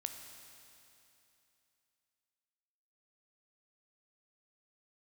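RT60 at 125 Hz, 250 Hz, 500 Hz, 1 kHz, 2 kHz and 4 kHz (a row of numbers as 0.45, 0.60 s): 2.9, 2.9, 2.9, 2.9, 2.9, 2.9 s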